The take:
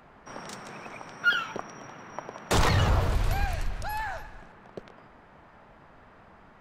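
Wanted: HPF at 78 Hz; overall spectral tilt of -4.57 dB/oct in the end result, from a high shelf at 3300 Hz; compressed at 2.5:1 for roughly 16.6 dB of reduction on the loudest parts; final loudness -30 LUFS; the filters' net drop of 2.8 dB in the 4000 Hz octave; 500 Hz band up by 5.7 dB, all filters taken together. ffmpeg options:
-af "highpass=78,equalizer=f=500:t=o:g=7,highshelf=f=3.3k:g=6,equalizer=f=4k:t=o:g=-8.5,acompressor=threshold=-44dB:ratio=2.5,volume=14dB"

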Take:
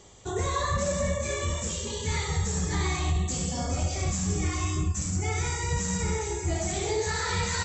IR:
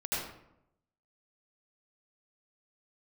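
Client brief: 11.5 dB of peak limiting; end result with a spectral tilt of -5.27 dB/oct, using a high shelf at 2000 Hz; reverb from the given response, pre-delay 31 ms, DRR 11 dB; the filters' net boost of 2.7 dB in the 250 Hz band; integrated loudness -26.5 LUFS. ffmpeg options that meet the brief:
-filter_complex "[0:a]equalizer=f=250:t=o:g=4.5,highshelf=f=2k:g=-6.5,alimiter=level_in=4.5dB:limit=-24dB:level=0:latency=1,volume=-4.5dB,asplit=2[a][b];[1:a]atrim=start_sample=2205,adelay=31[c];[b][c]afir=irnorm=-1:irlink=0,volume=-17dB[d];[a][d]amix=inputs=2:normalize=0,volume=9.5dB"

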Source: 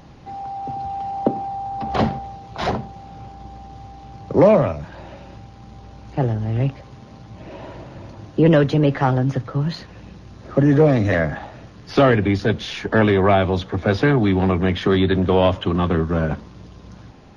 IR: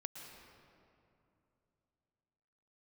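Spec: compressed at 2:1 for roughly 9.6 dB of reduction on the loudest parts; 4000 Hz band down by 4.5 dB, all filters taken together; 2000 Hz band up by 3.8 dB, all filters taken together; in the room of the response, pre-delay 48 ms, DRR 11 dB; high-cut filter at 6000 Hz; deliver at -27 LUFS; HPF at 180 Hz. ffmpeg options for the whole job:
-filter_complex "[0:a]highpass=180,lowpass=6k,equalizer=f=2k:t=o:g=6.5,equalizer=f=4k:t=o:g=-8.5,acompressor=threshold=-27dB:ratio=2,asplit=2[a][b];[1:a]atrim=start_sample=2205,adelay=48[c];[b][c]afir=irnorm=-1:irlink=0,volume=-8dB[d];[a][d]amix=inputs=2:normalize=0"

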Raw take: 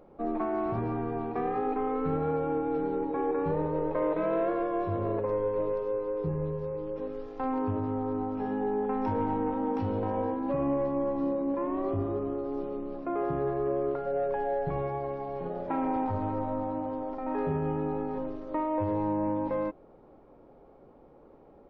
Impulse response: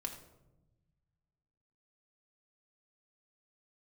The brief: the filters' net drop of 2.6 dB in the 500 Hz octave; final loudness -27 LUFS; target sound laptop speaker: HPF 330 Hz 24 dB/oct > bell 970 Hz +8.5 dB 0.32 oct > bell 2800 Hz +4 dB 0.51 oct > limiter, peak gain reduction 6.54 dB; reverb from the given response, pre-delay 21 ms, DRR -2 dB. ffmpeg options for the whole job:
-filter_complex "[0:a]equalizer=f=500:t=o:g=-3,asplit=2[a][b];[1:a]atrim=start_sample=2205,adelay=21[c];[b][c]afir=irnorm=-1:irlink=0,volume=3dB[d];[a][d]amix=inputs=2:normalize=0,highpass=f=330:w=0.5412,highpass=f=330:w=1.3066,equalizer=f=970:t=o:w=0.32:g=8.5,equalizer=f=2.8k:t=o:w=0.51:g=4,volume=3dB,alimiter=limit=-17dB:level=0:latency=1"

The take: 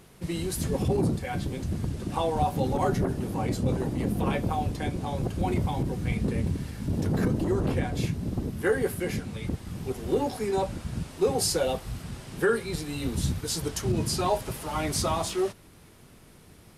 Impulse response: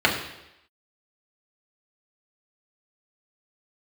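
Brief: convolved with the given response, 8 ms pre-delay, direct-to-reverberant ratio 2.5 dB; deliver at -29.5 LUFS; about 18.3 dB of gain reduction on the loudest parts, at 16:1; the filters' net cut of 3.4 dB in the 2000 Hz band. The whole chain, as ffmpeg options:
-filter_complex "[0:a]equalizer=f=2k:t=o:g=-4.5,acompressor=threshold=-39dB:ratio=16,asplit=2[a][b];[1:a]atrim=start_sample=2205,adelay=8[c];[b][c]afir=irnorm=-1:irlink=0,volume=-21.5dB[d];[a][d]amix=inputs=2:normalize=0,volume=12.5dB"

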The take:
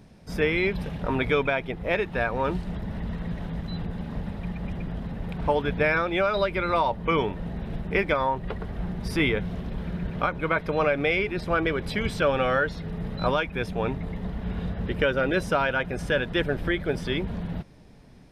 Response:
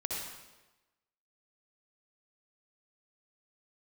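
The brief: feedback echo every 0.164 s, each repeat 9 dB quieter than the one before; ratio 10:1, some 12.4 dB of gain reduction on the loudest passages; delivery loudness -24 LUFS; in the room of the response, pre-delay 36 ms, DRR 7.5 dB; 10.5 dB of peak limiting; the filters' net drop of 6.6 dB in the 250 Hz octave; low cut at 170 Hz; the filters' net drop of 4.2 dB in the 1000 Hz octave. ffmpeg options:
-filter_complex "[0:a]highpass=170,equalizer=f=250:t=o:g=-8,equalizer=f=1k:t=o:g=-5,acompressor=threshold=-34dB:ratio=10,alimiter=level_in=5.5dB:limit=-24dB:level=0:latency=1,volume=-5.5dB,aecho=1:1:164|328|492|656:0.355|0.124|0.0435|0.0152,asplit=2[a][b];[1:a]atrim=start_sample=2205,adelay=36[c];[b][c]afir=irnorm=-1:irlink=0,volume=-11dB[d];[a][d]amix=inputs=2:normalize=0,volume=15dB"

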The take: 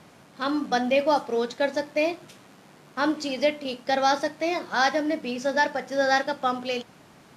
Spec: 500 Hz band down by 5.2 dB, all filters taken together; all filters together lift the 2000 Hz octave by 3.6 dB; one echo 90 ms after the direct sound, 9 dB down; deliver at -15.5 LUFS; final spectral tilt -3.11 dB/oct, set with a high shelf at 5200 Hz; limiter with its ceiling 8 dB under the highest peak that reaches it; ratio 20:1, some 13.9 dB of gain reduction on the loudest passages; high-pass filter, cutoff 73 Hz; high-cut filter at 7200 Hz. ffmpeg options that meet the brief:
-af "highpass=73,lowpass=7.2k,equalizer=f=500:t=o:g=-6.5,equalizer=f=2k:t=o:g=4.5,highshelf=f=5.2k:g=3.5,acompressor=threshold=-29dB:ratio=20,alimiter=level_in=2dB:limit=-24dB:level=0:latency=1,volume=-2dB,aecho=1:1:90:0.355,volume=21dB"

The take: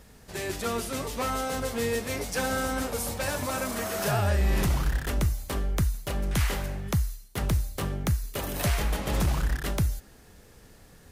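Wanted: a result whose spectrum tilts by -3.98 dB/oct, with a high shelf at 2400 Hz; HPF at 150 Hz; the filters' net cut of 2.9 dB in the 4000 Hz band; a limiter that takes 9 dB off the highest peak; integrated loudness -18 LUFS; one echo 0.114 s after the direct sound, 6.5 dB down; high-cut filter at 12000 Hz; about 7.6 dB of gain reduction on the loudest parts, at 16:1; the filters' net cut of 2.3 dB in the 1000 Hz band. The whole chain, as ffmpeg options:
-af "highpass=150,lowpass=12k,equalizer=f=1k:t=o:g=-3.5,highshelf=f=2.4k:g=3.5,equalizer=f=4k:t=o:g=-7,acompressor=threshold=-32dB:ratio=16,alimiter=level_in=4dB:limit=-24dB:level=0:latency=1,volume=-4dB,aecho=1:1:114:0.473,volume=20dB"

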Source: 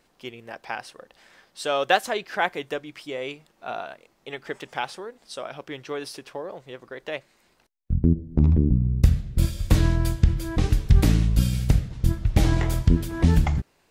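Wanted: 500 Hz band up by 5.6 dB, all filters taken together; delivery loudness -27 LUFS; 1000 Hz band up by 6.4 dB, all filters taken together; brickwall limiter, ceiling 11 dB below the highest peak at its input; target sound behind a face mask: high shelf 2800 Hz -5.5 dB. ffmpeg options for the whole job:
-af "equalizer=f=500:t=o:g=5,equalizer=f=1k:t=o:g=7.5,alimiter=limit=-10.5dB:level=0:latency=1,highshelf=f=2.8k:g=-5.5,volume=-1.5dB"

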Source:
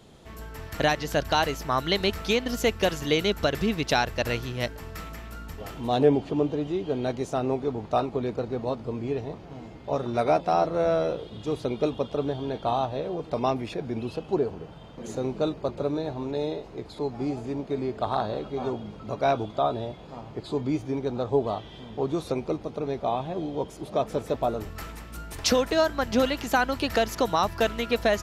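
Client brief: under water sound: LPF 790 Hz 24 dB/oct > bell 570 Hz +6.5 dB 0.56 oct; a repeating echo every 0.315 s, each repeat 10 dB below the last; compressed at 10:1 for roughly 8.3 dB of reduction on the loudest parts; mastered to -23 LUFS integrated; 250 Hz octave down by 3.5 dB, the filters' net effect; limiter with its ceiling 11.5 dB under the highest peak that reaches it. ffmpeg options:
-af "equalizer=f=250:t=o:g=-5,acompressor=threshold=-25dB:ratio=10,alimiter=level_in=1dB:limit=-24dB:level=0:latency=1,volume=-1dB,lowpass=f=790:w=0.5412,lowpass=f=790:w=1.3066,equalizer=f=570:t=o:w=0.56:g=6.5,aecho=1:1:315|630|945|1260:0.316|0.101|0.0324|0.0104,volume=11dB"

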